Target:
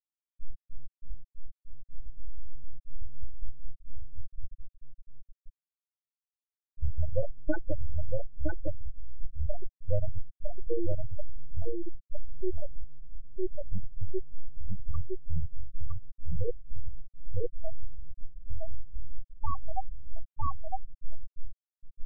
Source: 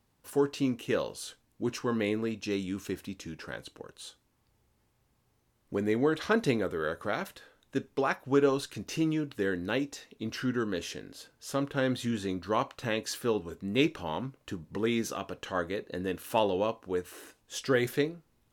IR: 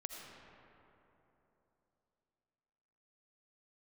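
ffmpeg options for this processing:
-af "aeval=exprs='abs(val(0))':channel_layout=same,highshelf=frequency=8400:gain=-3,bandreject=frequency=76.51:width_type=h:width=4,bandreject=frequency=153.02:width_type=h:width=4,bandreject=frequency=229.53:width_type=h:width=4,bandreject=frequency=306.04:width_type=h:width=4,bandreject=frequency=382.55:width_type=h:width=4,bandreject=frequency=459.06:width_type=h:width=4,bandreject=frequency=535.57:width_type=h:width=4,flanger=delay=0.2:depth=2.5:regen=38:speed=0.7:shape=triangular,dynaudnorm=framelen=570:gausssize=7:maxgain=10dB,atempo=0.84,afftfilt=real='re*gte(hypot(re,im),0.355)':imag='im*gte(hypot(re,im),0.355)':win_size=1024:overlap=0.75,aecho=1:1:959:0.668,acompressor=threshold=-21dB:ratio=10,asetrate=32097,aresample=44100,atempo=1.37395,bandreject=frequency=660:width=12,volume=3.5dB"

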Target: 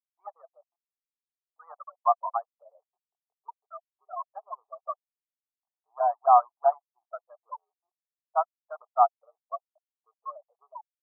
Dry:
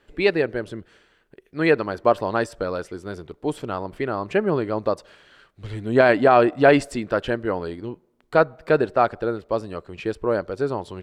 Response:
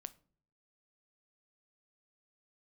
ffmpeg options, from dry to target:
-af "afftfilt=real='re*gte(hypot(re,im),0.251)':imag='im*gte(hypot(re,im),0.251)':win_size=1024:overlap=0.75,acontrast=27,asuperpass=centerf=930:order=12:qfactor=1.7,volume=-2.5dB"

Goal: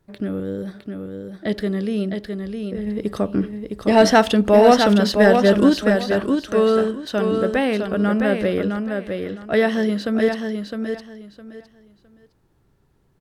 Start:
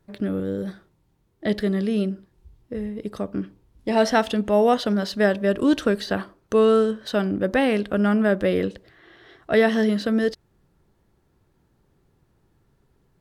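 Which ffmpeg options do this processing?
ffmpeg -i in.wav -filter_complex "[0:a]asplit=3[link_01][link_02][link_03];[link_01]afade=type=out:start_time=2.86:duration=0.02[link_04];[link_02]acontrast=78,afade=type=in:start_time=2.86:duration=0.02,afade=type=out:start_time=5.68:duration=0.02[link_05];[link_03]afade=type=in:start_time=5.68:duration=0.02[link_06];[link_04][link_05][link_06]amix=inputs=3:normalize=0,aecho=1:1:660|1320|1980:0.531|0.117|0.0257" out.wav

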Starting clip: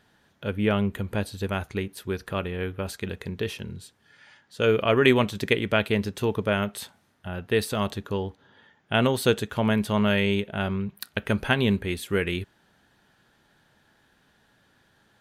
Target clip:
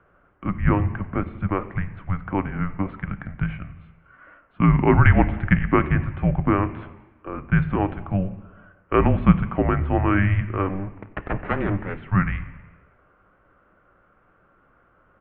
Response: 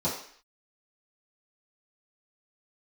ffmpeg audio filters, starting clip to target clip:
-filter_complex "[0:a]highpass=frequency=85:poles=1,asettb=1/sr,asplit=3[link_01][link_02][link_03];[link_01]atrim=end=10.694[link_04];[link_02]atrim=start=10.69:end=11.97,asetpts=PTS-STARTPTS,afade=type=in:duration=0.004:curve=qsin,afade=type=out:start_time=1.276:duration=0.004:curve=qsin,aeval=exprs='abs(val(0))':channel_layout=same[link_05];[link_03]atrim=start=11.966[link_06];[link_04][link_05]acrossfade=duration=0.004:curve1=hsin:curve2=qsin[link_07];[link_07][link_06]acrossfade=duration=0.004:curve1=qsin:curve2=hsin,aemphasis=mode=reproduction:type=75fm,asplit=6[link_08][link_09][link_10][link_11][link_12][link_13];[link_09]adelay=91,afreqshift=-50,volume=-22dB[link_14];[link_10]adelay=182,afreqshift=-100,volume=-26dB[link_15];[link_11]adelay=273,afreqshift=-150,volume=-30dB[link_16];[link_12]adelay=364,afreqshift=-200,volume=-34dB[link_17];[link_13]adelay=455,afreqshift=-250,volume=-38.1dB[link_18];[link_08][link_14][link_15][link_16][link_17][link_18]amix=inputs=6:normalize=0,asplit=2[link_19][link_20];[1:a]atrim=start_sample=2205,asetrate=22932,aresample=44100[link_21];[link_20][link_21]afir=irnorm=-1:irlink=0,volume=-24.5dB[link_22];[link_19][link_22]amix=inputs=2:normalize=0,highpass=frequency=240:width_type=q:width=0.5412,highpass=frequency=240:width_type=q:width=1.307,lowpass=frequency=2500:width_type=q:width=0.5176,lowpass=frequency=2500:width_type=q:width=0.7071,lowpass=frequency=2500:width_type=q:width=1.932,afreqshift=-290,volume=6dB"

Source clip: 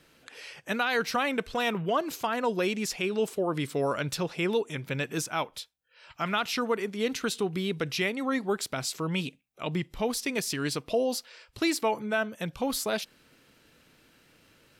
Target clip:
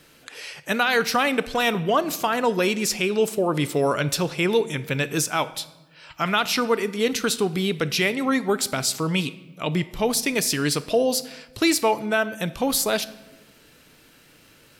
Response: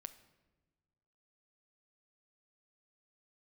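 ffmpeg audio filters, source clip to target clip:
-filter_complex "[0:a]asplit=2[link_01][link_02];[1:a]atrim=start_sample=2205,highshelf=frequency=5500:gain=7.5[link_03];[link_02][link_03]afir=irnorm=-1:irlink=0,volume=12.5dB[link_04];[link_01][link_04]amix=inputs=2:normalize=0,volume=-4dB"

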